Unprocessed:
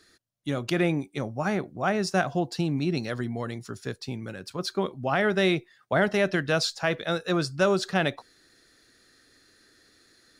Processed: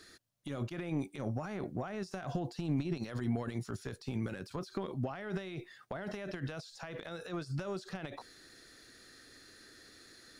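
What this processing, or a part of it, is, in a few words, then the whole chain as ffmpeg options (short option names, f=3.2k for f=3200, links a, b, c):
de-esser from a sidechain: -filter_complex "[0:a]asplit=2[a][b];[b]highpass=f=5.1k:p=1,apad=whole_len=458498[c];[a][c]sidechaincompress=threshold=-56dB:ratio=16:attack=2.5:release=27,volume=3dB"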